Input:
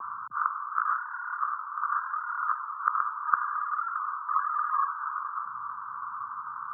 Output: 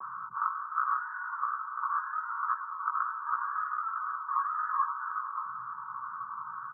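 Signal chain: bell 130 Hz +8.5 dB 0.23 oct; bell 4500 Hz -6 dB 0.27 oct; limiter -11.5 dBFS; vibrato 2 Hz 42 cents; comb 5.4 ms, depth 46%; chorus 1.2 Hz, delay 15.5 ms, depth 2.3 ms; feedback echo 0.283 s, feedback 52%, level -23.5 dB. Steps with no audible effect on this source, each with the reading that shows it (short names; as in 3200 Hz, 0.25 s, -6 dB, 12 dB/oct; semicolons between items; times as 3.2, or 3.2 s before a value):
bell 4500 Hz: input band ends at 1700 Hz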